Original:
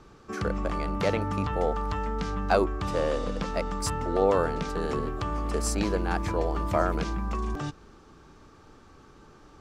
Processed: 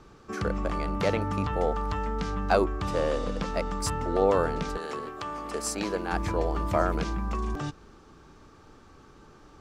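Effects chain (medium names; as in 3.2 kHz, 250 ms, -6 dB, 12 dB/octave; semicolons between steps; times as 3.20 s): 4.76–6.12 s: high-pass 860 Hz -> 250 Hz 6 dB/octave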